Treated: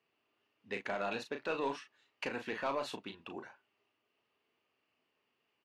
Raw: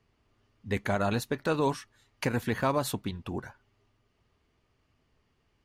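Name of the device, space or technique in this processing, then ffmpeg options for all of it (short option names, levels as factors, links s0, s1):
intercom: -filter_complex "[0:a]highpass=330,lowpass=4800,equalizer=f=2700:t=o:w=0.32:g=8,asoftclip=type=tanh:threshold=0.119,asplit=2[s0][s1];[s1]adelay=36,volume=0.447[s2];[s0][s2]amix=inputs=2:normalize=0,volume=0.473"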